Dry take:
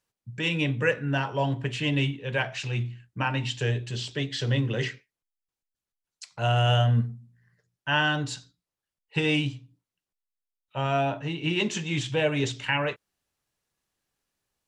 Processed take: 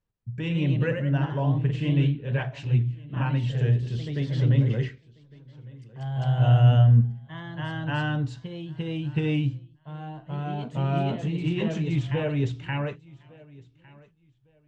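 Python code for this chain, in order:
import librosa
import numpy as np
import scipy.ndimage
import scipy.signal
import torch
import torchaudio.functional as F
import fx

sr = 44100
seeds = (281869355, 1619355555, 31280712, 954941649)

y = fx.riaa(x, sr, side='playback')
y = fx.echo_feedback(y, sr, ms=1156, feedback_pct=22, wet_db=-23)
y = fx.echo_pitch(y, sr, ms=139, semitones=1, count=2, db_per_echo=-6.0)
y = y * 10.0 ** (-6.0 / 20.0)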